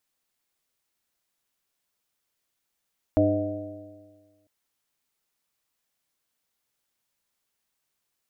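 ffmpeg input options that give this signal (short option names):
-f lavfi -i "aevalsrc='0.0668*pow(10,-3*t/1.55)*sin(2*PI*99.06*t)+0.015*pow(10,-3*t/1.55)*sin(2*PI*199.06*t)+0.112*pow(10,-3*t/1.55)*sin(2*PI*300.94*t)+0.0158*pow(10,-3*t/1.55)*sin(2*PI*405.6*t)+0.0376*pow(10,-3*t/1.55)*sin(2*PI*513.9*t)+0.106*pow(10,-3*t/1.55)*sin(2*PI*626.65*t)+0.0119*pow(10,-3*t/1.55)*sin(2*PI*744.6*t)':d=1.3:s=44100"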